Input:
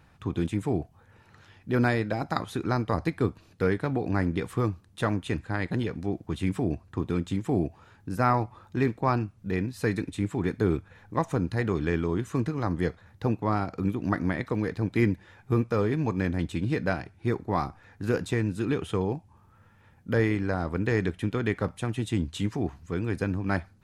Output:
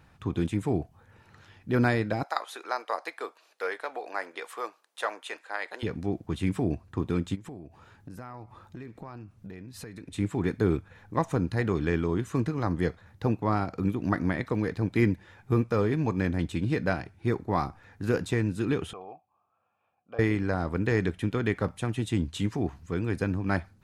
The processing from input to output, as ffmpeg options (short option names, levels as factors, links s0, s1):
-filter_complex "[0:a]asettb=1/sr,asplit=3[s0][s1][s2];[s0]atrim=end=2.234[s3];[s1]atrim=start=2.23:end=5.83,asetpts=PTS-STARTPTS,afade=t=in:d=0.004:c=qsin,afade=t=out:st=3.596:d=0.004:c=qsin,highpass=f=540:w=0.5412,highpass=f=540:w=1.3066[s4];[s2]atrim=start=5.826[s5];[s3][s4]acrossfade=d=0.004:c1=hsin:c2=qsin[s6];[s6][s5]acrossfade=d=0.004:c1=qsin:c2=hsin,asplit=3[s7][s8][s9];[s7]afade=t=out:st=7.34:d=0.02[s10];[s8]acompressor=threshold=0.0126:ratio=12:attack=3.2:release=140:knee=1:detection=peak,afade=t=in:st=7.34:d=0.02,afade=t=out:st=10.1:d=0.02[s11];[s9]afade=t=in:st=10.1:d=0.02[s12];[s10][s11][s12]amix=inputs=3:normalize=0,asettb=1/sr,asplit=3[s13][s14][s15];[s13]atrim=end=18.934[s16];[s14]atrim=start=18.93:end=20.19,asetpts=PTS-STARTPTS,afade=t=in:d=0.004:c=qsin,afade=t=out:st=1.256:d=0.004:c=qsin,asplit=3[s17][s18][s19];[s17]bandpass=f=730:t=q:w=8,volume=1[s20];[s18]bandpass=f=1090:t=q:w=8,volume=0.501[s21];[s19]bandpass=f=2440:t=q:w=8,volume=0.355[s22];[s20][s21][s22]amix=inputs=3:normalize=0[s23];[s15]atrim=start=20.186[s24];[s16][s23]acrossfade=d=0.004:c1=hsin:c2=qsin[s25];[s25][s24]acrossfade=d=0.004:c1=qsin:c2=hsin"